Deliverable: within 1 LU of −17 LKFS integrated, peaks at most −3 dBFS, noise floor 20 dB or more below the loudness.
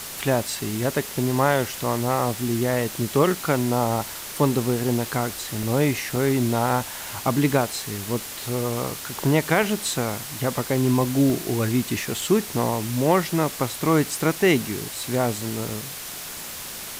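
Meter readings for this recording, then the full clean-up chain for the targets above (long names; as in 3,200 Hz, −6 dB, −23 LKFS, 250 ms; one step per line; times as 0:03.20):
number of dropouts 8; longest dropout 1.4 ms; background noise floor −35 dBFS; target noise floor −44 dBFS; integrated loudness −23.5 LKFS; sample peak −6.5 dBFS; target loudness −17.0 LKFS
→ repair the gap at 0:01.36/0:05.63/0:06.16/0:07.53/0:09.63/0:11.30/0:12.18/0:15.70, 1.4 ms
noise reduction from a noise print 9 dB
level +6.5 dB
brickwall limiter −3 dBFS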